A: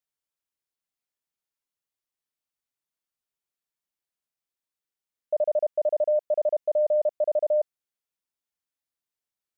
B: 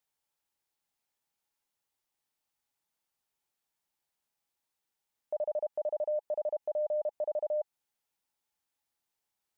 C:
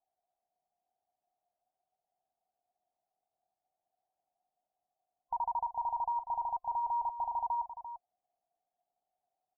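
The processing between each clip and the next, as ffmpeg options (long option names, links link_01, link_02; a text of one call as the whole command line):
ffmpeg -i in.wav -af "equalizer=frequency=840:width_type=o:width=0.24:gain=9.5,acompressor=threshold=-26dB:ratio=2.5,alimiter=level_in=7dB:limit=-24dB:level=0:latency=1:release=40,volume=-7dB,volume=4dB" out.wav
ffmpeg -i in.wav -af "afftfilt=real='real(if(between(b,1,1008),(2*floor((b-1)/24)+1)*24-b,b),0)':imag='imag(if(between(b,1,1008),(2*floor((b-1)/24)+1)*24-b,b),0)*if(between(b,1,1008),-1,1)':win_size=2048:overlap=0.75,lowpass=frequency=740:width_type=q:width=9.2,aecho=1:1:344:0.266,volume=-5dB" out.wav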